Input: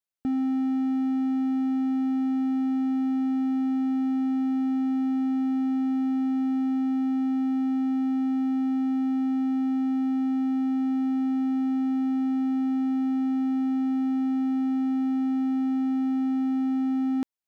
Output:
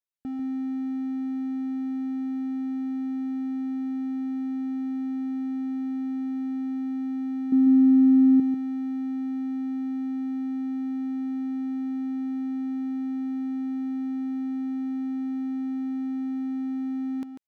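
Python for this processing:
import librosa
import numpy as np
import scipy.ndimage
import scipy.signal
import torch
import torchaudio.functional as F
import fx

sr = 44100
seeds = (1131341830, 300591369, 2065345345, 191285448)

y = fx.peak_eq(x, sr, hz=270.0, db=13.0, octaves=1.8, at=(7.52, 8.4))
y = y + 10.0 ** (-8.0 / 20.0) * np.pad(y, (int(144 * sr / 1000.0), 0))[:len(y)]
y = F.gain(torch.from_numpy(y), -6.5).numpy()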